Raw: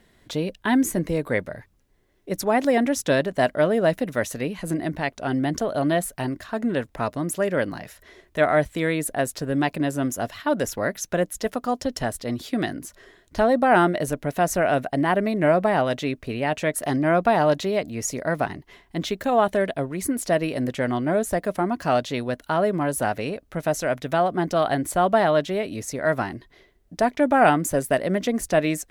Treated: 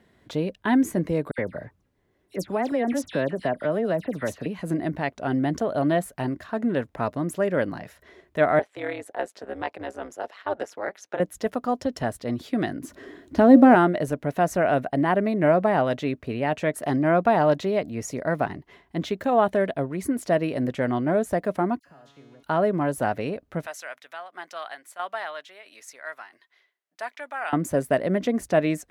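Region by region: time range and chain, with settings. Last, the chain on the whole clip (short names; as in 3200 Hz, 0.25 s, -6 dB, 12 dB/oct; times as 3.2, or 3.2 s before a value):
1.31–4.46 compressor 2:1, threshold -23 dBFS + dispersion lows, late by 72 ms, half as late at 2800 Hz
8.59–11.2 HPF 400 Hz 24 dB/oct + AM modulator 200 Hz, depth 70% + air absorption 51 m
12.83–13.75 G.711 law mismatch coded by mu + bell 280 Hz +14.5 dB 0.63 oct + de-hum 179.7 Hz, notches 5
21.79–22.43 compressor 10:1, threshold -29 dBFS + resonator 140 Hz, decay 1.6 s, mix 90% + dispersion lows, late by 62 ms, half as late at 2000 Hz
23.66–27.53 tremolo saw down 1.5 Hz, depth 65% + HPF 1400 Hz
whole clip: HPF 69 Hz; high shelf 3100 Hz -10 dB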